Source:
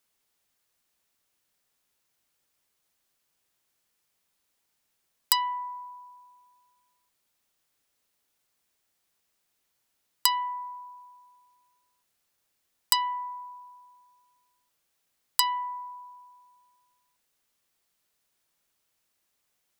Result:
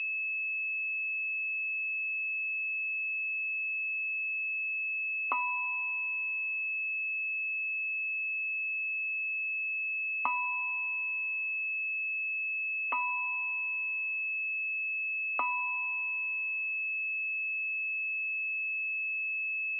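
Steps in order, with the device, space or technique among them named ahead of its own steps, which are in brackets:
toy sound module (linearly interpolated sample-rate reduction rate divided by 4×; switching amplifier with a slow clock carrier 2,600 Hz; loudspeaker in its box 700–4,400 Hz, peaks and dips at 840 Hz −4 dB, 1,200 Hz +5 dB, 1,700 Hz −7 dB, 2,400 Hz −4 dB, 4,200 Hz −7 dB)
level −2.5 dB

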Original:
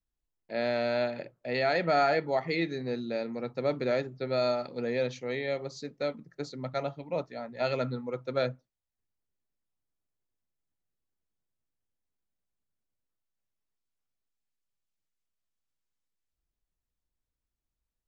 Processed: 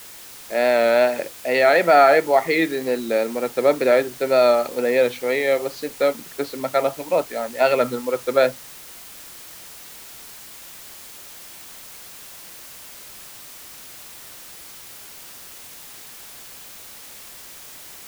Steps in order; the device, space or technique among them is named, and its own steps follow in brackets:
dictaphone (band-pass filter 330–3,300 Hz; automatic gain control gain up to 13.5 dB; tape wow and flutter; white noise bed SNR 18 dB)

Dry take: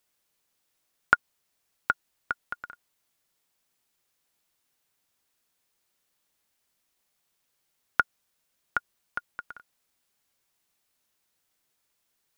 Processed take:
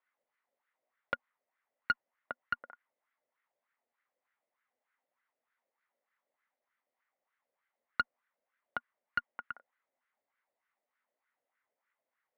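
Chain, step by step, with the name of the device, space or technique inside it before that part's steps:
dynamic equaliser 1,100 Hz, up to +4 dB, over −44 dBFS, Q 3.9
wah-wah guitar rig (LFO wah 3.3 Hz 550–1,500 Hz, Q 3.6; tube saturation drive 27 dB, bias 0.35; loudspeaker in its box 97–3,800 Hz, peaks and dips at 240 Hz +9 dB, 540 Hz +4 dB, 2,000 Hz +10 dB)
level +4.5 dB

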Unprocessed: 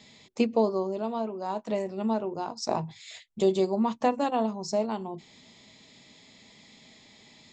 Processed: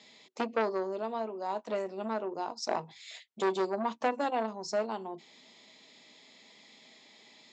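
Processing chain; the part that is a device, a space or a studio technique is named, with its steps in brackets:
public-address speaker with an overloaded transformer (saturating transformer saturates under 1,000 Hz; band-pass filter 310–6,900 Hz)
level −1.5 dB

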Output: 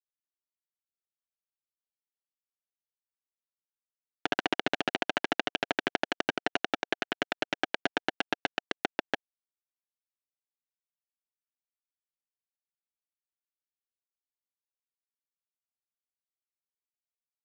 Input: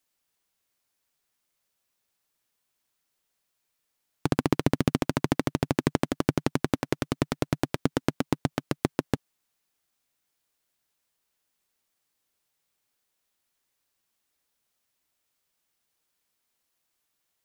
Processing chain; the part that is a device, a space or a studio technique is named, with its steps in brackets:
hand-held game console (bit reduction 4 bits; loudspeaker in its box 480–5,000 Hz, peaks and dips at 500 Hz −5 dB, 720 Hz +4 dB, 1,100 Hz −9 dB, 1,600 Hz +7 dB, 2,900 Hz +6 dB, 4,800 Hz −6 dB)

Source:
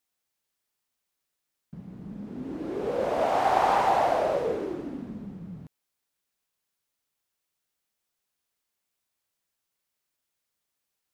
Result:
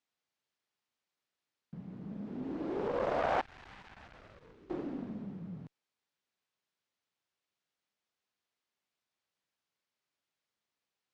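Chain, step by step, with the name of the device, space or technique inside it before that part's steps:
valve radio (band-pass filter 96–4,900 Hz; tube saturation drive 19 dB, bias 0.55; saturating transformer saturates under 1,000 Hz)
0:03.41–0:04.70: guitar amp tone stack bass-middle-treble 6-0-2

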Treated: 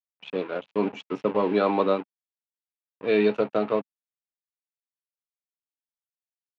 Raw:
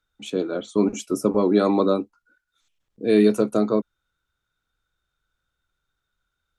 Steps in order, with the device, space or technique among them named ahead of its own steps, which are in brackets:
blown loudspeaker (dead-zone distortion −37 dBFS; loudspeaker in its box 160–3,700 Hz, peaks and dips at 230 Hz −9 dB, 340 Hz −8 dB, 890 Hz +4 dB, 2,600 Hz +7 dB)

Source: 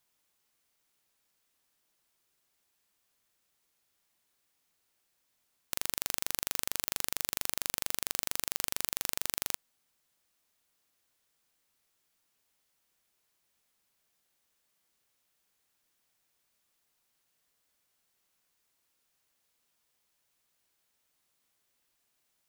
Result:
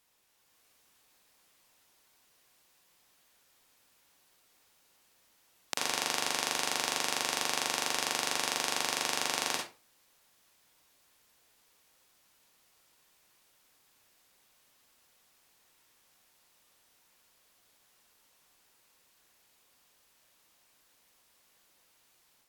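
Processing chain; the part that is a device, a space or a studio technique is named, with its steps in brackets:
filmed off a television (band-pass filter 220–6,700 Hz; parametric band 820 Hz +4 dB 0.46 octaves; convolution reverb RT60 0.35 s, pre-delay 46 ms, DRR −0.5 dB; white noise bed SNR 28 dB; automatic gain control gain up to 5 dB; AAC 96 kbit/s 44,100 Hz)

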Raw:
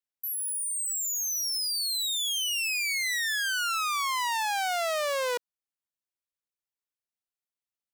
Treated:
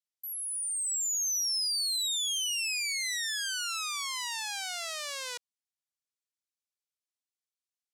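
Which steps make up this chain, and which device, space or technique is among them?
piezo pickup straight into a mixer (low-pass filter 6,600 Hz 12 dB per octave; first difference)
level +4.5 dB

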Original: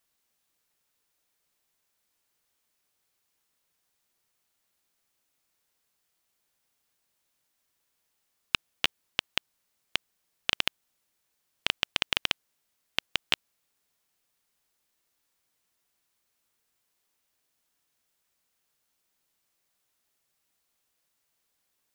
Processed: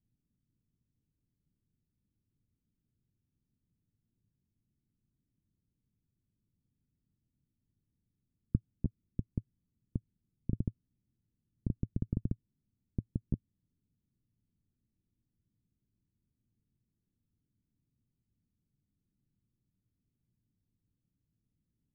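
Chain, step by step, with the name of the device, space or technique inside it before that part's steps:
the neighbour's flat through the wall (low-pass filter 240 Hz 24 dB per octave; parametric band 110 Hz +6 dB 0.58 octaves)
level +13 dB

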